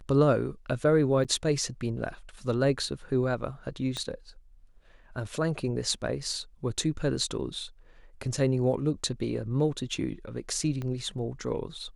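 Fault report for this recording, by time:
0:01.24–0:01.25: drop-out 7.4 ms
0:03.97: click −20 dBFS
0:10.82: click −23 dBFS

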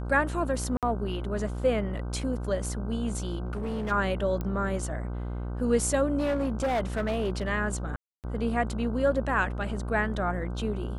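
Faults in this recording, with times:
mains buzz 60 Hz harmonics 26 −33 dBFS
0:00.77–0:00.83: drop-out 57 ms
0:03.46–0:03.92: clipping −28 dBFS
0:04.41: click −20 dBFS
0:06.18–0:07.48: clipping −23.5 dBFS
0:07.96–0:08.24: drop-out 278 ms

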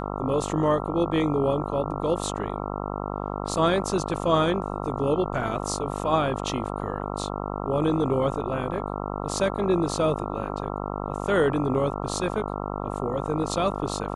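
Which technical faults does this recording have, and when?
mains buzz 50 Hz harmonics 27 −31 dBFS

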